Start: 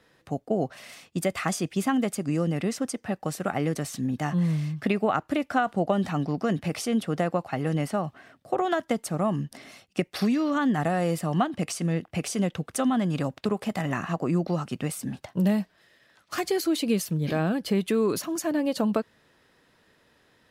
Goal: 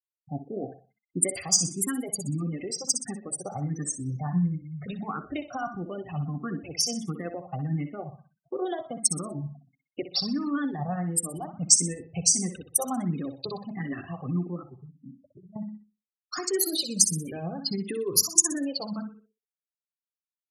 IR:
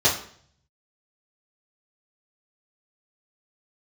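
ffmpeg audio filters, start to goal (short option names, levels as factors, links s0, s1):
-filter_complex "[0:a]asettb=1/sr,asplit=3[s0][s1][s2];[s0]atrim=end=4.554[s3];[s1]atrim=start=4.55:end=5.81,asetpts=PTS-STARTPTS,afade=t=in:d=0.004:c=qsin,afade=t=out:st=1.256:d=0.004:c=qsin,aeval=exprs='val(0)+0.5*0.0178*sgn(val(0))':c=same[s4];[s2]atrim=start=5.806[s5];[s3][s4]acrossfade=d=0.004:c1=hsin:c2=qsin[s6];[s6][s5]acrossfade=d=0.004:c1=qsin:c2=hsin,alimiter=limit=0.126:level=0:latency=1:release=42,bandreject=f=109.2:t=h:w=4,bandreject=f=218.4:t=h:w=4,bandreject=f=327.6:t=h:w=4,bandreject=f=436.8:t=h:w=4,bandreject=f=546:t=h:w=4,bandreject=f=655.2:t=h:w=4,adynamicequalizer=threshold=0.00794:dfrequency=500:dqfactor=1.1:tfrequency=500:tqfactor=1.1:attack=5:release=100:ratio=0.375:range=3:mode=cutabove:tftype=bell,asettb=1/sr,asplit=3[s7][s8][s9];[s7]atrim=end=14.644[s10];[s8]atrim=start=14.64:end=15.56,asetpts=PTS-STARTPTS,afade=t=in:d=0.004:c=qsin,afade=t=out:st=0.916:d=0.004:c=qsin,acompressor=threshold=0.01:ratio=8[s11];[s9]atrim=start=15.556[s12];[s10][s11]acrossfade=d=0.004:c1=hsin:c2=qsin[s13];[s13][s12]acrossfade=d=0.004:c1=qsin:c2=hsin,tremolo=f=11:d=0.37,asplit=2[s14][s15];[s15]lowshelf=f=130:g=7[s16];[1:a]atrim=start_sample=2205,lowpass=2600[s17];[s16][s17]afir=irnorm=-1:irlink=0,volume=0.0531[s18];[s14][s18]amix=inputs=2:normalize=0,afftfilt=real='re*gte(hypot(re,im),0.0282)':imag='im*gte(hypot(re,im),0.0282)':win_size=1024:overlap=0.75,aecho=1:1:62|124|186|248:0.299|0.102|0.0345|0.0117,aexciter=amount=8.5:drive=6.7:freq=4400,asplit=2[s19][s20];[s20]afreqshift=1.5[s21];[s19][s21]amix=inputs=2:normalize=1"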